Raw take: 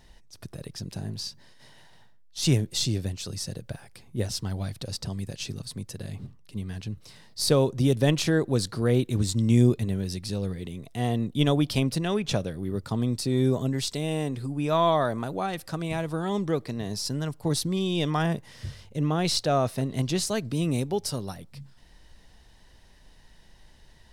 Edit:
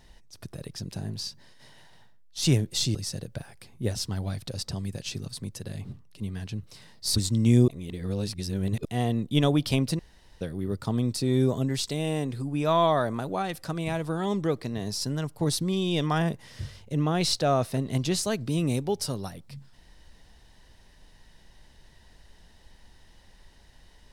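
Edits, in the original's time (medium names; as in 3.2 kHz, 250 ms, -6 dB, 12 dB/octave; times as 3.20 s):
2.95–3.29 s: delete
7.50–9.20 s: delete
9.72–10.89 s: reverse
12.03–12.45 s: room tone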